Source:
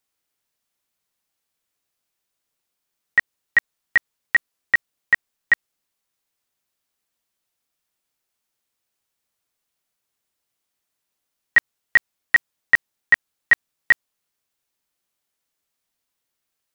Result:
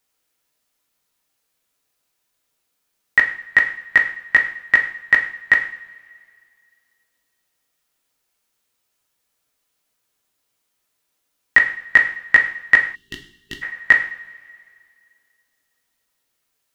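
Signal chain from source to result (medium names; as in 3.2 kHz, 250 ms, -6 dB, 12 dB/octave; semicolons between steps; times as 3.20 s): two-slope reverb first 0.52 s, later 2.3 s, from -20 dB, DRR 2.5 dB; time-frequency box 12.95–13.63 s, 420–2700 Hz -26 dB; trim +4.5 dB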